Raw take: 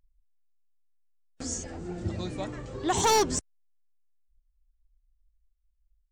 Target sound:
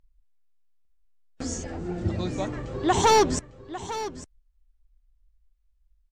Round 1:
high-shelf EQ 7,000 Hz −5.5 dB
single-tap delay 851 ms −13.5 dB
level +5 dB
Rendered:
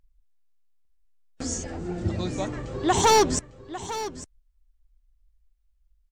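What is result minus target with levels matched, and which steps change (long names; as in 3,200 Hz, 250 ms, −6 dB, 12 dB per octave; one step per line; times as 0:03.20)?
8,000 Hz band +3.5 dB
change: high-shelf EQ 7,000 Hz −13.5 dB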